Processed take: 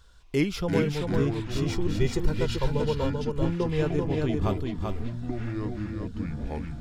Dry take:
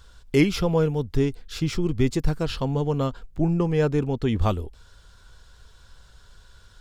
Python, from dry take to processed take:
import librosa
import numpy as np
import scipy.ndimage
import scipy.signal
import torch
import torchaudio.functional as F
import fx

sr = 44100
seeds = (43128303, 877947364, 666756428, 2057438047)

y = fx.comb(x, sr, ms=2.1, depth=0.86, at=(1.39, 3.69))
y = fx.echo_pitch(y, sr, ms=203, semitones=-6, count=3, db_per_echo=-6.0)
y = y + 10.0 ** (-4.0 / 20.0) * np.pad(y, (int(388 * sr / 1000.0), 0))[:len(y)]
y = y * 10.0 ** (-6.0 / 20.0)